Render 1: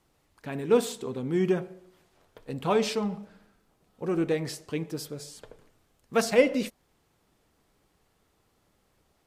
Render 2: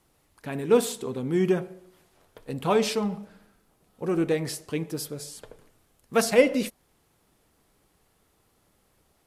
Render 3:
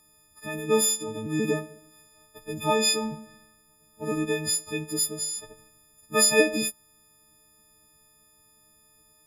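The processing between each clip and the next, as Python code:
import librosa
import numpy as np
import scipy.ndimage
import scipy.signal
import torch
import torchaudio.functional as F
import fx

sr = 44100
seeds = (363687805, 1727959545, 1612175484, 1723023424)

y1 = fx.peak_eq(x, sr, hz=11000.0, db=7.5, octaves=0.58)
y1 = y1 * 10.0 ** (2.0 / 20.0)
y2 = fx.freq_snap(y1, sr, grid_st=6)
y2 = fx.hpss(y2, sr, part='percussive', gain_db=8)
y2 = y2 * 10.0 ** (-4.0 / 20.0)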